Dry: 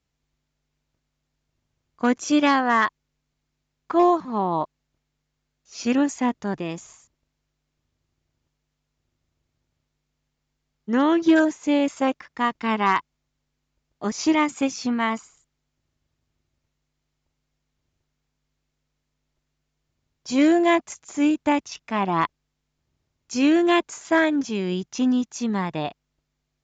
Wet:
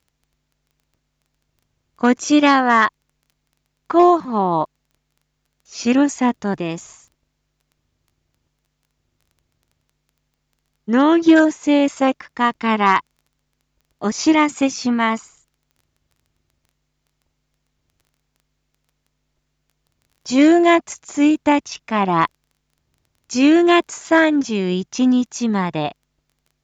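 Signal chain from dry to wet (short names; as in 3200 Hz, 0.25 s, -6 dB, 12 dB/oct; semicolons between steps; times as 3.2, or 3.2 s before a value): crackle 11/s -48 dBFS; gain +5.5 dB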